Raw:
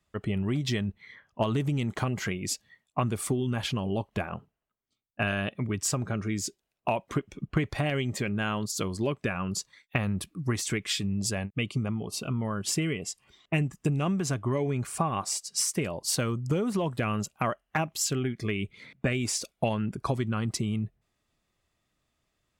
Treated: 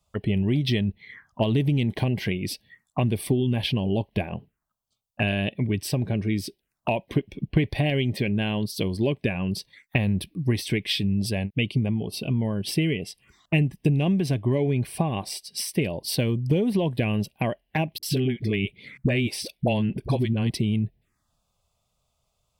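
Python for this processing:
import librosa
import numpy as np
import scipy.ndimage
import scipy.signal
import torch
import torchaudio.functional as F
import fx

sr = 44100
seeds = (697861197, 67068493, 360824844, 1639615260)

y = fx.env_phaser(x, sr, low_hz=300.0, high_hz=1300.0, full_db=-35.0)
y = fx.dispersion(y, sr, late='highs', ms=47.0, hz=380.0, at=(17.98, 20.5))
y = y * 10.0 ** (6.0 / 20.0)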